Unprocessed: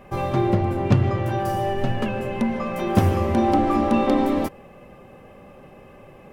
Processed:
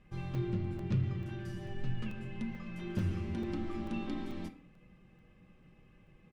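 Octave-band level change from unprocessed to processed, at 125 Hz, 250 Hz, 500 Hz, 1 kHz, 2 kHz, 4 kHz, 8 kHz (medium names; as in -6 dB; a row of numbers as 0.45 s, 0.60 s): -12.5 dB, -16.0 dB, -21.0 dB, -27.0 dB, -16.0 dB, -15.0 dB, under -15 dB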